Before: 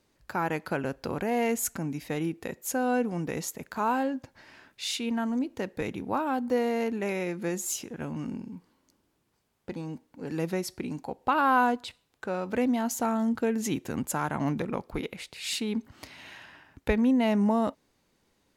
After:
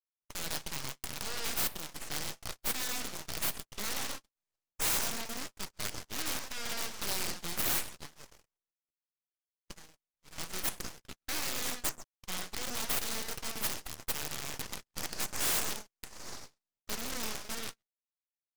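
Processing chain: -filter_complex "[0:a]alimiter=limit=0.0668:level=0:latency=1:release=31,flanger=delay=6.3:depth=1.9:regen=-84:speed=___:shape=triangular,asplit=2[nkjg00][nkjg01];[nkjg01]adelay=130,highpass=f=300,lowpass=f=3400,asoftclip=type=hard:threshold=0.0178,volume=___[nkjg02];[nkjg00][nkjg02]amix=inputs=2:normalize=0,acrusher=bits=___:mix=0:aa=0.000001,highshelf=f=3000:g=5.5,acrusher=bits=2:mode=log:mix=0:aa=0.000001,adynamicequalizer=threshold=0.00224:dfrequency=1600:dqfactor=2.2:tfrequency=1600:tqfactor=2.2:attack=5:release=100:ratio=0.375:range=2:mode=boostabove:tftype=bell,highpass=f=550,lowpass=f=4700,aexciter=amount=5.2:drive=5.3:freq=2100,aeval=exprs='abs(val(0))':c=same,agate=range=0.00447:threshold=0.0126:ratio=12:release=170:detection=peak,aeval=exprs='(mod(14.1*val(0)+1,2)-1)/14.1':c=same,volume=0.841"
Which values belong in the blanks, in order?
0.5, 0.398, 9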